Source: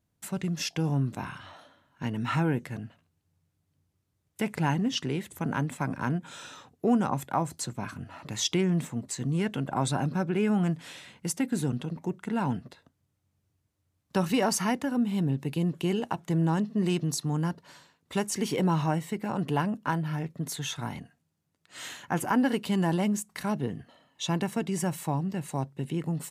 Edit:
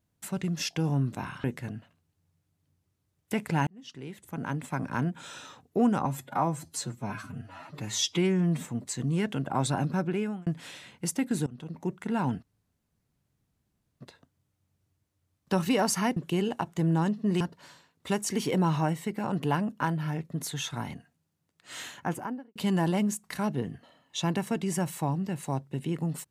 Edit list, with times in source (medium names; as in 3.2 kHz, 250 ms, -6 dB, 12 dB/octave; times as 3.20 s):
1.44–2.52 s: delete
4.75–6.01 s: fade in
7.13–8.86 s: stretch 1.5×
10.27–10.68 s: fade out
11.68–12.09 s: fade in, from -21.5 dB
12.64 s: insert room tone 1.58 s
14.80–15.68 s: delete
16.92–17.46 s: delete
21.95–22.61 s: studio fade out